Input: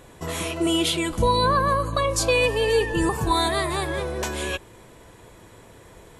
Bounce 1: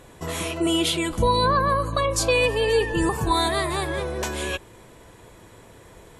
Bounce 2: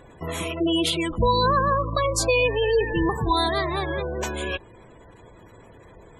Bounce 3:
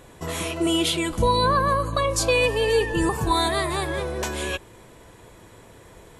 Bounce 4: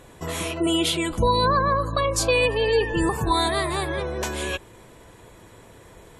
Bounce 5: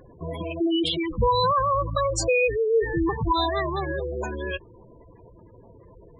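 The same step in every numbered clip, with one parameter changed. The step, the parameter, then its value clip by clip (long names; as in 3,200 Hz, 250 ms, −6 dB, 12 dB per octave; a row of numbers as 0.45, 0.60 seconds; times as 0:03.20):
gate on every frequency bin, under each frame's peak: −45, −20, −60, −35, −10 decibels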